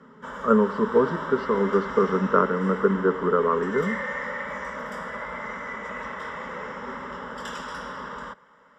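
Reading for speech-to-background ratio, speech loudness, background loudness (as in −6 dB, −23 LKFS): 10.0 dB, −23.5 LKFS, −33.5 LKFS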